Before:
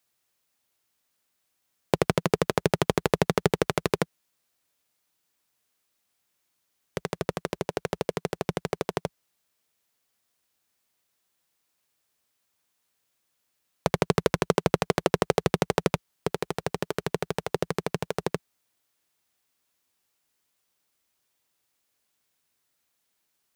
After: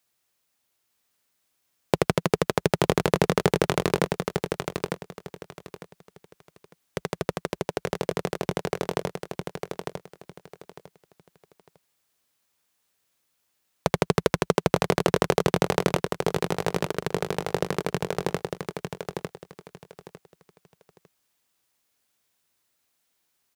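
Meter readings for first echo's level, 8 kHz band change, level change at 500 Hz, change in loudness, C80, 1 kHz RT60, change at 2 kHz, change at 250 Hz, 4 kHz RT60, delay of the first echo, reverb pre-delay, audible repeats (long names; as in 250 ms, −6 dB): −5.5 dB, +2.0 dB, +2.0 dB, +1.0 dB, no reverb audible, no reverb audible, +2.0 dB, +2.0 dB, no reverb audible, 902 ms, no reverb audible, 3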